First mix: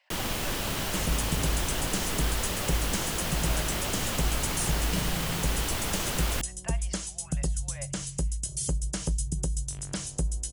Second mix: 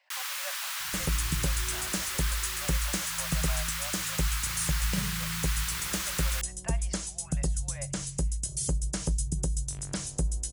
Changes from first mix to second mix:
first sound: add inverse Chebyshev high-pass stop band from 560 Hz, stop band 40 dB; master: add bell 3000 Hz -4 dB 0.3 oct

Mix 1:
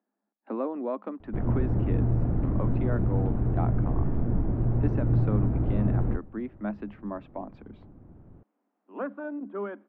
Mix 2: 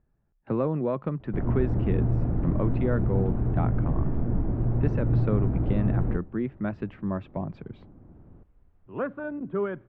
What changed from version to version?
speech: remove rippled Chebyshev high-pass 200 Hz, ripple 6 dB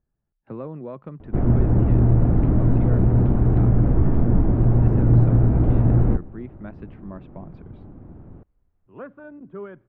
speech -7.5 dB; background +8.5 dB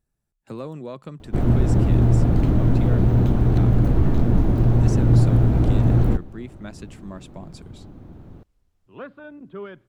master: remove Bessel low-pass 1500 Hz, order 4

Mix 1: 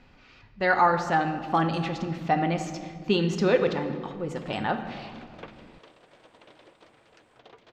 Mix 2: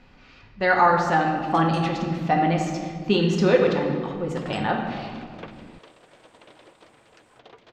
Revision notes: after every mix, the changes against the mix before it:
speech: send +7.5 dB; first sound +9.0 dB; second sound +3.0 dB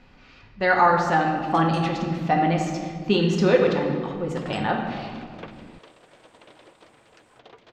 none

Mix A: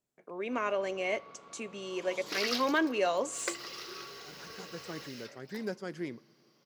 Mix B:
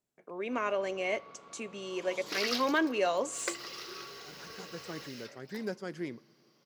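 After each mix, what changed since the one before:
none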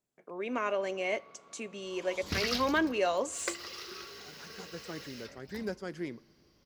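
first sound -5.0 dB; second sound: remove brick-wall FIR high-pass 280 Hz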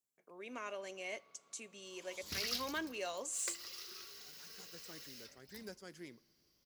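master: add pre-emphasis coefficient 0.8

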